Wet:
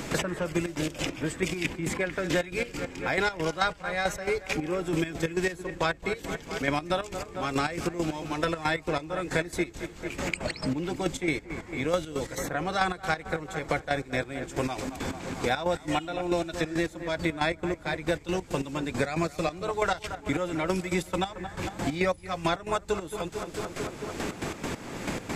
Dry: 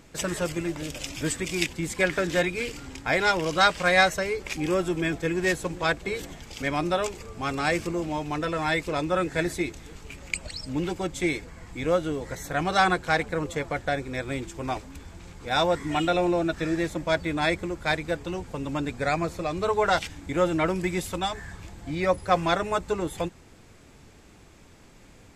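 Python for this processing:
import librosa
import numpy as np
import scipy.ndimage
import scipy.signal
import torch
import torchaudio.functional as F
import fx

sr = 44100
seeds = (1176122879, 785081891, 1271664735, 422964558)

y = fx.step_gate(x, sr, bpm=137, pattern='.x...x.x', floor_db=-12.0, edge_ms=4.5)
y = fx.echo_wet_lowpass(y, sr, ms=223, feedback_pct=52, hz=2400.0, wet_db=-15.0)
y = fx.band_squash(y, sr, depth_pct=100)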